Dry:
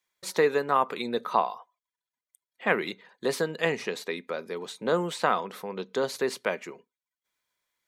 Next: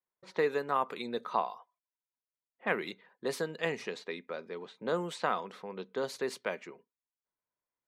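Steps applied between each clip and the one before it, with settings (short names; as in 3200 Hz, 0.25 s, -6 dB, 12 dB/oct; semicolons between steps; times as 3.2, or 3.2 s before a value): low-pass opened by the level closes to 1000 Hz, open at -25 dBFS; gain -6.5 dB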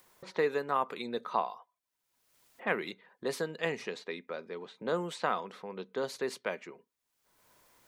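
upward compressor, threshold -42 dBFS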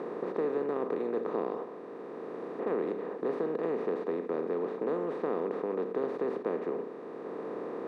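per-bin compression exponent 0.2; band-pass 310 Hz, Q 2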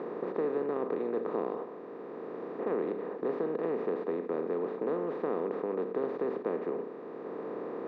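air absorption 130 m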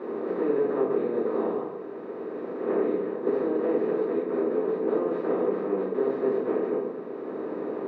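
shoebox room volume 89 m³, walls mixed, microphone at 2.4 m; gain -5.5 dB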